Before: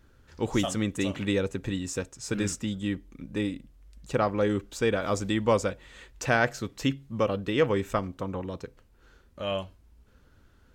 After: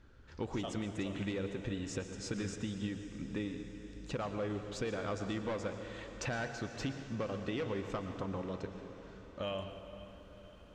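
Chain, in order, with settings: hard clip -20 dBFS, distortion -14 dB; LPF 5200 Hz 12 dB/oct, from 9.42 s 10000 Hz; compressor, threshold -34 dBFS, peak gain reduction 11.5 dB; diffused feedback echo 0.519 s, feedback 64%, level -14.5 dB; reverb RT60 1.8 s, pre-delay 0.103 s, DRR 7.5 dB; gain -1.5 dB

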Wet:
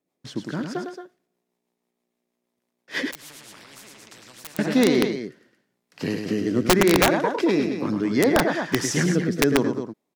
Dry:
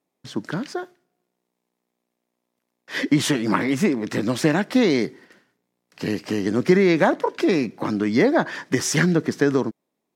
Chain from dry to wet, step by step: rotary speaker horn 6.3 Hz, later 0.75 Hz, at 4.07; on a send: loudspeakers at several distances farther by 36 m -6 dB, 77 m -9 dB; on the sum: wrapped overs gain 9 dB; 3.11–4.59 spectral compressor 4:1

